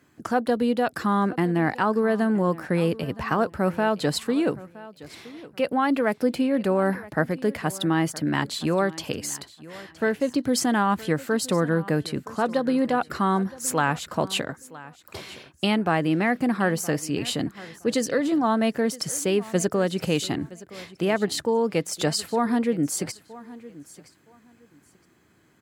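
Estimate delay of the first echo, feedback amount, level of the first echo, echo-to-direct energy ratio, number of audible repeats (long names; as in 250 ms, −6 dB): 968 ms, 21%, −19.0 dB, −19.0 dB, 2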